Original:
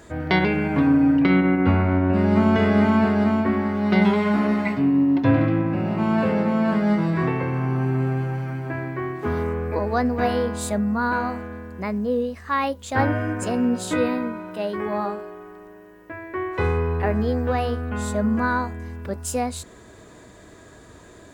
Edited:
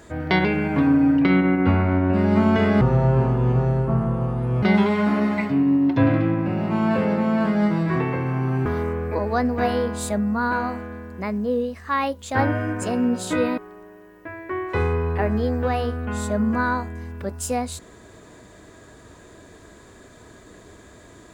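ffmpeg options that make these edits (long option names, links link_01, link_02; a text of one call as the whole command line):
ffmpeg -i in.wav -filter_complex "[0:a]asplit=5[link_01][link_02][link_03][link_04][link_05];[link_01]atrim=end=2.814[link_06];[link_02]atrim=start=2.81:end=3.9,asetpts=PTS-STARTPTS,asetrate=26460,aresample=44100[link_07];[link_03]atrim=start=3.896:end=7.932[link_08];[link_04]atrim=start=9.258:end=14.182[link_09];[link_05]atrim=start=15.418[link_10];[link_06][link_07]acrossfade=duration=0.004:curve1=hsin:curve2=hsin[link_11];[link_11][link_08]acrossfade=duration=0.004:curve1=hsin:curve2=hsin[link_12];[link_12][link_09]acrossfade=duration=0.004:curve1=hsin:curve2=hsin[link_13];[link_13][link_10]acrossfade=duration=0.004:curve1=hsin:curve2=hsin" out.wav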